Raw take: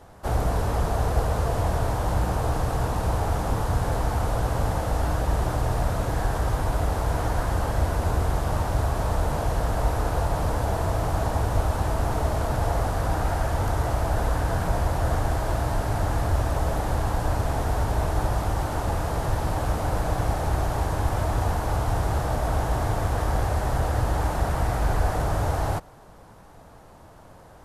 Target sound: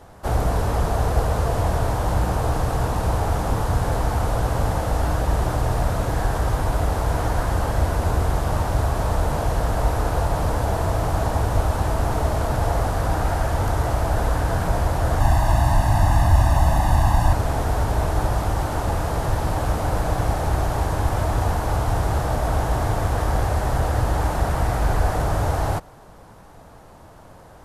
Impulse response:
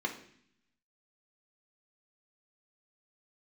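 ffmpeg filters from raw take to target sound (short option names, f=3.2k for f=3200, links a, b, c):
-filter_complex "[0:a]asettb=1/sr,asplit=3[a][b][c];[a]atrim=end=15.204[d];[b]atrim=start=15.2:end=17.33,asetpts=PTS-STARTPTS,afade=t=in:d=0.004:c=qsin,afade=t=out:st=2.126:d=0.004:c=qsin,aecho=1:1:1.1:0.9,atrim=end_sample=93933[e];[c]atrim=start=17.326[f];[d][e]acrossfade=d=0.004:c1=hsin:c2=qsin[g];[g][f]acrossfade=d=0.004:c1=qsin:c2=hsin,volume=3dB"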